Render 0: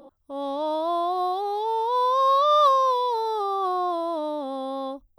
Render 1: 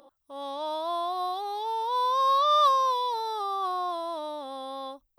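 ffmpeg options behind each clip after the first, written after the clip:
-af "tiltshelf=f=640:g=-8,volume=-6.5dB"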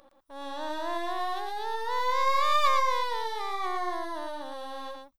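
-af "aeval=exprs='if(lt(val(0),0),0.251*val(0),val(0))':c=same,aecho=1:1:114:0.596"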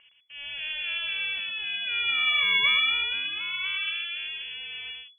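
-af "lowpass=f=2.9k:t=q:w=0.5098,lowpass=f=2.9k:t=q:w=0.6013,lowpass=f=2.9k:t=q:w=0.9,lowpass=f=2.9k:t=q:w=2.563,afreqshift=-3400"

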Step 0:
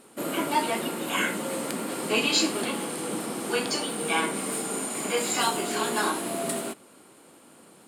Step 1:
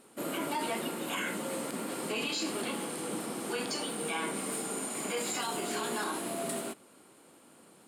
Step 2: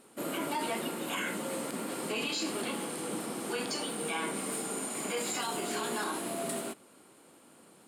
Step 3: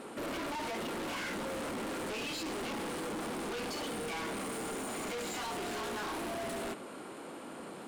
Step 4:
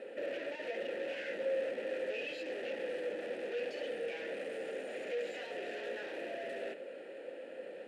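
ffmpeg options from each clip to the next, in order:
-af "alimiter=limit=-19.5dB:level=0:latency=1:release=36,volume=-5dB"
-af anull
-filter_complex "[0:a]lowshelf=f=350:g=10,asplit=2[a][b];[b]highpass=f=720:p=1,volume=24dB,asoftclip=type=tanh:threshold=-19dB[c];[a][c]amix=inputs=2:normalize=0,lowpass=f=1.9k:p=1,volume=-6dB,asoftclip=type=tanh:threshold=-35dB,volume=-1.5dB"
-filter_complex "[0:a]asplit=3[a][b][c];[a]bandpass=f=530:t=q:w=8,volume=0dB[d];[b]bandpass=f=1.84k:t=q:w=8,volume=-6dB[e];[c]bandpass=f=2.48k:t=q:w=8,volume=-9dB[f];[d][e][f]amix=inputs=3:normalize=0,volume=9dB"

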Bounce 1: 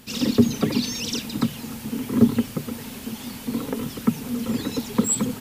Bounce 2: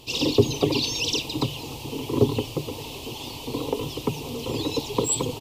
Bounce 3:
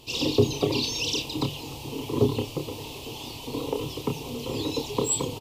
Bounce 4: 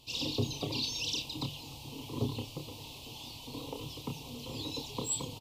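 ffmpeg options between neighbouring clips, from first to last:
-af "firequalizer=gain_entry='entry(140,0);entry(210,-21);entry(310,3);entry(570,0);entry(1000,3);entry(1500,-23);entry(2700,4);entry(5900,-2);entry(9600,-8)':delay=0.05:min_phase=1,volume=3dB"
-filter_complex "[0:a]asplit=2[a][b];[b]adelay=29,volume=-7dB[c];[a][c]amix=inputs=2:normalize=0,volume=-3dB"
-af "equalizer=f=400:t=o:w=0.67:g=-9,equalizer=f=1.6k:t=o:w=0.67:g=-9,equalizer=f=4k:t=o:w=0.67:g=4,volume=-8dB"

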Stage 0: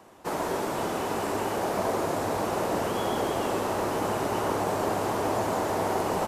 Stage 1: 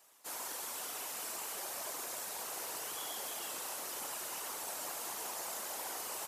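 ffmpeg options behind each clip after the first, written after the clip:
-af "aderivative,afftfilt=real='hypot(re,im)*cos(2*PI*random(0))':imag='hypot(re,im)*sin(2*PI*random(1))':win_size=512:overlap=0.75,volume=6.5dB"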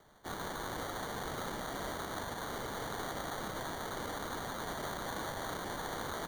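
-af "acrusher=samples=17:mix=1:aa=0.000001,volume=2dB"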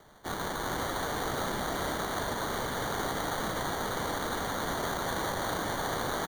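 -af "aecho=1:1:405:0.562,volume=6dB"

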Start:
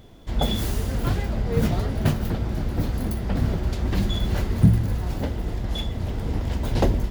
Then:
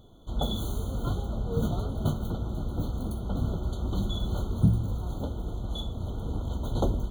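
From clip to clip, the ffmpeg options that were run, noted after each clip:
-af "afftfilt=real='re*eq(mod(floor(b*sr/1024/1500),2),0)':imag='im*eq(mod(floor(b*sr/1024/1500),2),0)':win_size=1024:overlap=0.75,volume=-6dB"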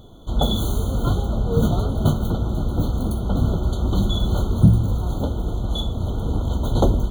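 -af "acontrast=75,volume=2.5dB"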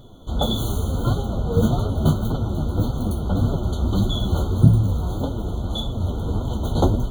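-af "flanger=delay=6.8:depth=6.8:regen=27:speed=1.7:shape=triangular,volume=3.5dB"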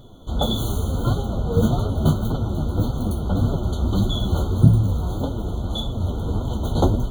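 -af anull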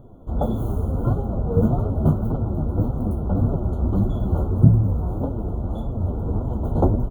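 -af "firequalizer=gain_entry='entry(670,0);entry(3600,-28);entry(11000,-13)':delay=0.05:min_phase=1"

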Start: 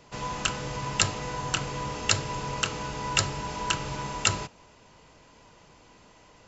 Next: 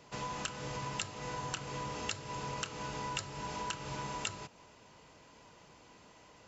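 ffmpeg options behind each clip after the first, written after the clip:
-af "highpass=f=81:p=1,acompressor=threshold=-33dB:ratio=5,volume=-3dB"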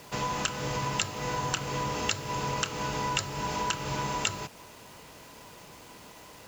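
-af "acrusher=bits=9:mix=0:aa=0.000001,volume=8.5dB"

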